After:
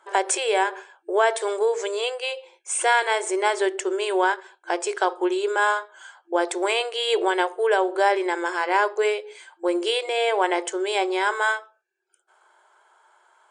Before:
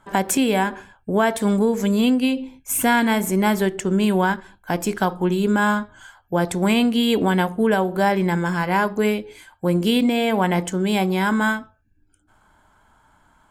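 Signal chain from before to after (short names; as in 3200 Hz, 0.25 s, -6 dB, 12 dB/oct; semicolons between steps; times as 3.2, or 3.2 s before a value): FFT band-pass 340–9700 Hz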